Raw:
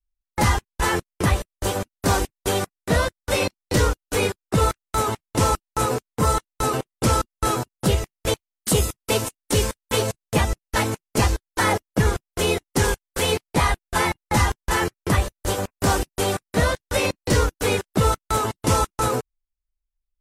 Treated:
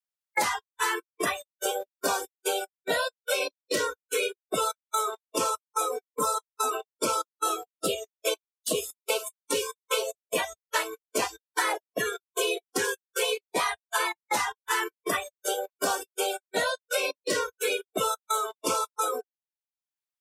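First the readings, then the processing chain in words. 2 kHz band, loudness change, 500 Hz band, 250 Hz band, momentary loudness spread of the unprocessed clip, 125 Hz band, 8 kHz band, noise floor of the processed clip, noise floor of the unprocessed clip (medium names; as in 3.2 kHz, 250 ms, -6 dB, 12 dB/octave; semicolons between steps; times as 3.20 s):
-4.0 dB, -6.5 dB, -6.0 dB, -13.5 dB, 3 LU, -29.0 dB, -4.0 dB, under -85 dBFS, under -85 dBFS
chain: high-pass 510 Hz 12 dB/octave; spectral noise reduction 27 dB; three bands compressed up and down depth 100%; trim -3 dB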